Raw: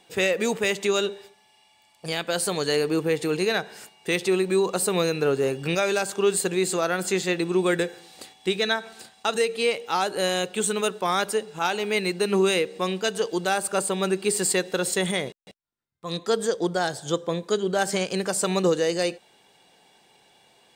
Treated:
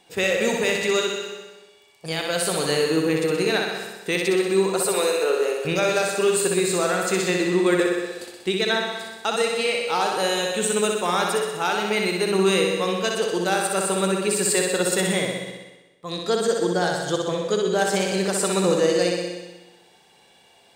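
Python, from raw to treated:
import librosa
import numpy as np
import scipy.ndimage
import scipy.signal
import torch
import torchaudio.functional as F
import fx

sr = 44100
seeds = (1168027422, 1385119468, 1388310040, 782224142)

p1 = fx.steep_highpass(x, sr, hz=360.0, slope=36, at=(4.86, 5.65))
p2 = p1 + fx.room_flutter(p1, sr, wall_m=10.7, rt60_s=1.0, dry=0)
y = fx.rev_plate(p2, sr, seeds[0], rt60_s=0.92, hf_ratio=0.9, predelay_ms=115, drr_db=10.0)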